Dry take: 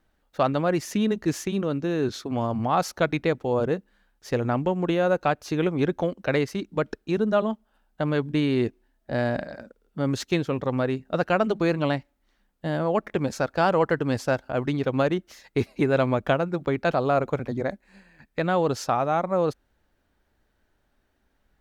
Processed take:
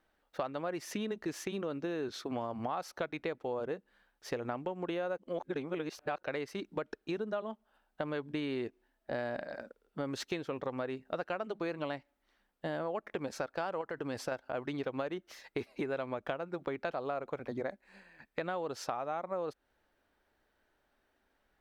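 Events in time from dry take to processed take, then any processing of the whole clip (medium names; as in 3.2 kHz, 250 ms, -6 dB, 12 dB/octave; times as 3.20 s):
5.18–6.23 s: reverse
13.81–14.32 s: compression, threshold -22 dBFS
whole clip: tone controls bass -11 dB, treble -4 dB; band-stop 6.8 kHz, Q 18; compression 6:1, threshold -32 dBFS; trim -1.5 dB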